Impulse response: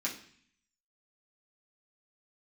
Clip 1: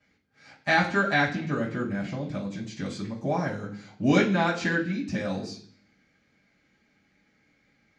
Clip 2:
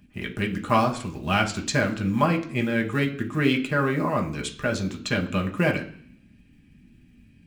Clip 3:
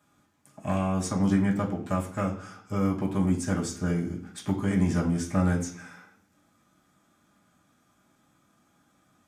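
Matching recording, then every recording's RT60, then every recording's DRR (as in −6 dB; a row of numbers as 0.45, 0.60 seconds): 3; 0.55, 0.55, 0.55 seconds; −10.5, 1.0, −5.5 decibels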